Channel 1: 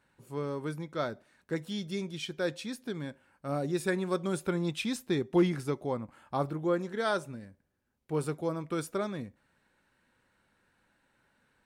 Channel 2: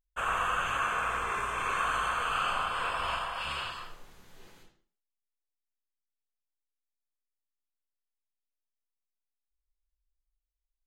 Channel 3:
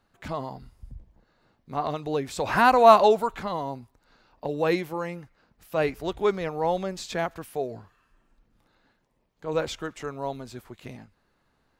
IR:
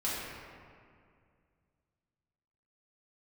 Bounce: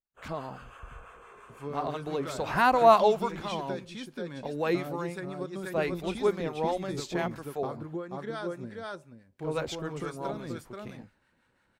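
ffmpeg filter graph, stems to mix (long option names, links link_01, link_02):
-filter_complex "[0:a]highshelf=frequency=10000:gain=-9.5,adelay=1300,volume=3dB,asplit=2[link_01][link_02];[link_02]volume=-10dB[link_03];[1:a]equalizer=frequency=440:width_type=o:width=1.2:gain=10.5,volume=-19.5dB[link_04];[2:a]agate=range=-33dB:threshold=-52dB:ratio=3:detection=peak,volume=-2dB[link_05];[link_01][link_04]amix=inputs=2:normalize=0,acompressor=threshold=-32dB:ratio=10,volume=0dB[link_06];[link_03]aecho=0:1:481:1[link_07];[link_05][link_06][link_07]amix=inputs=3:normalize=0,acrossover=split=820[link_08][link_09];[link_08]aeval=exprs='val(0)*(1-0.5/2+0.5/2*cos(2*PI*5.9*n/s))':channel_layout=same[link_10];[link_09]aeval=exprs='val(0)*(1-0.5/2-0.5/2*cos(2*PI*5.9*n/s))':channel_layout=same[link_11];[link_10][link_11]amix=inputs=2:normalize=0"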